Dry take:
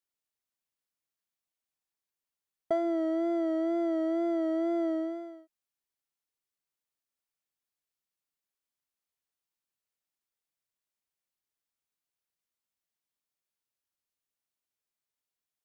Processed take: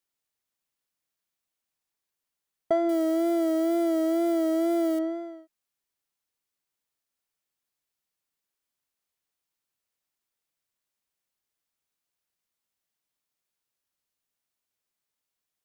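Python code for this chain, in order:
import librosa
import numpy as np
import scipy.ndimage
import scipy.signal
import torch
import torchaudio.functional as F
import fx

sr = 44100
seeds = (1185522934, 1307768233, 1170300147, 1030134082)

y = fx.crossing_spikes(x, sr, level_db=-34.5, at=(2.89, 4.99))
y = F.gain(torch.from_numpy(y), 4.5).numpy()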